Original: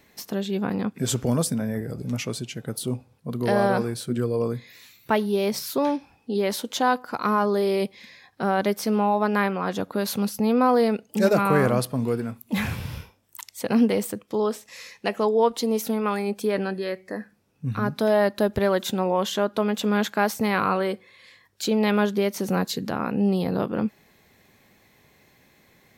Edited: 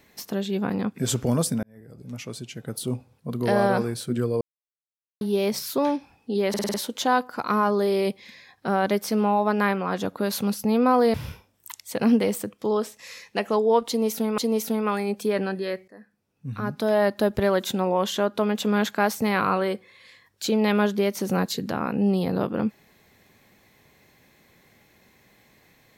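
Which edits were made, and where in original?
1.63–2.95 fade in
4.41–5.21 mute
6.49 stutter 0.05 s, 6 plays
10.89–12.83 cut
15.57–16.07 loop, 2 plays
17.07–18.32 fade in, from -19 dB

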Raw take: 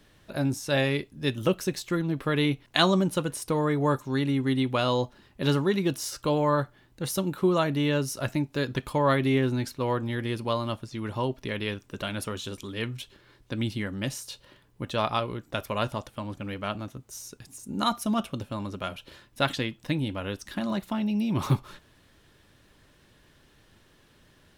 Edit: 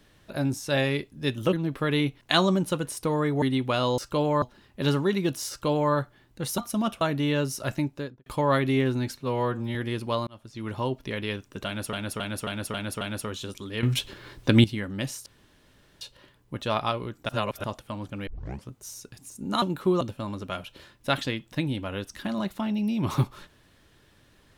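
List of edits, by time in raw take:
1.53–1.98 cut
3.87–4.47 cut
6.1–6.54 copy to 5.03
7.19–7.58 swap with 17.9–18.33
8.39–8.83 studio fade out
9.75–10.13 stretch 1.5×
10.65–11.06 fade in linear
12.04–12.31 loop, 6 plays
12.86–13.67 gain +12 dB
14.29 insert room tone 0.75 s
15.57–15.92 reverse
16.55 tape start 0.42 s

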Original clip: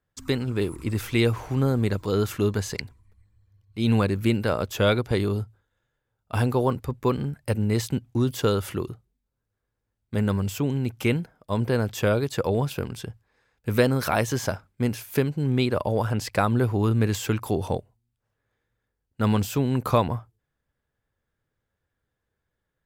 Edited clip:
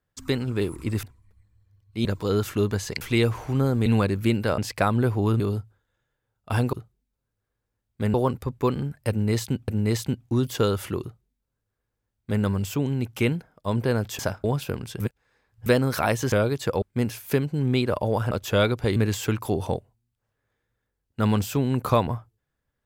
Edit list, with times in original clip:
1.03–1.88 swap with 2.84–3.86
4.58–5.23 swap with 16.15–16.97
7.52–8.1 loop, 2 plays
8.86–10.27 copy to 6.56
12.03–12.53 swap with 14.41–14.66
13.09–13.75 reverse

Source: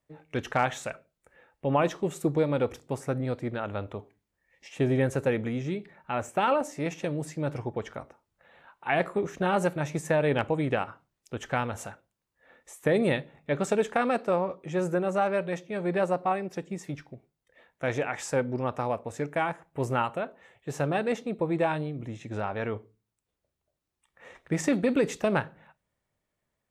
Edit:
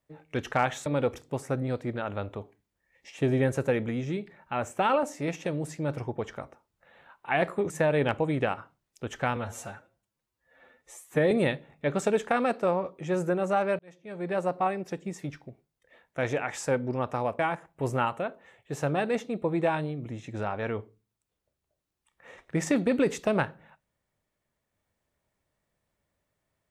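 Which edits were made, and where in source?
0.86–2.44 cut
9.28–10 cut
11.66–12.96 stretch 1.5×
15.44–16.24 fade in
19.04–19.36 cut

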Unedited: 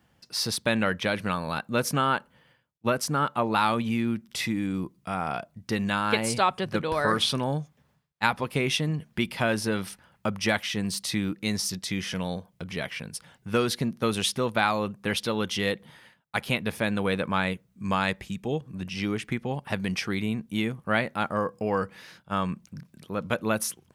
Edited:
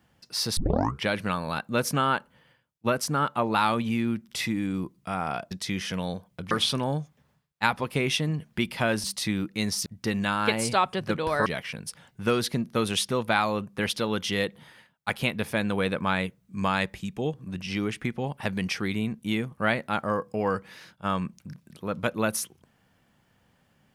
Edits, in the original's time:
0.57 tape start 0.49 s
5.51–7.11 swap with 11.73–12.73
9.64–10.91 cut

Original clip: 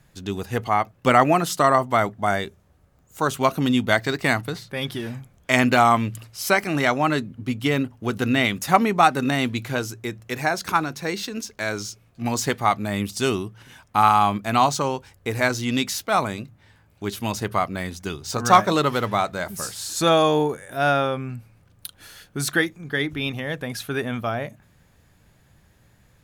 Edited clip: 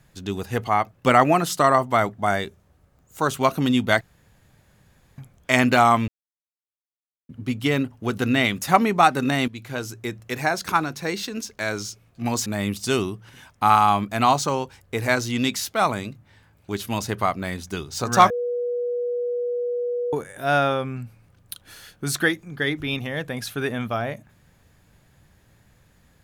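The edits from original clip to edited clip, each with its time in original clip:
4.01–5.18 room tone
6.08–7.29 mute
9.48–10.04 fade in, from -13.5 dB
12.46–12.79 cut
18.63–20.46 bleep 485 Hz -22.5 dBFS

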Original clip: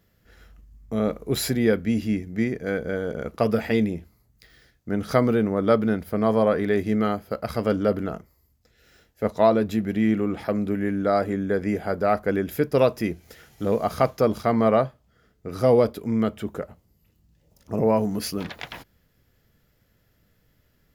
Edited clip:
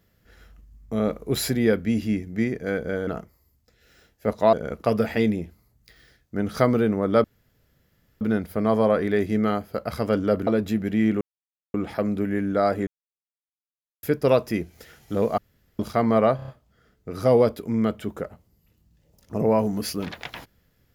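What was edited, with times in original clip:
5.78 insert room tone 0.97 s
8.04–9.5 move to 3.07
10.24 insert silence 0.53 s
11.37–12.53 mute
13.88–14.29 room tone
14.86 stutter 0.03 s, 5 plays

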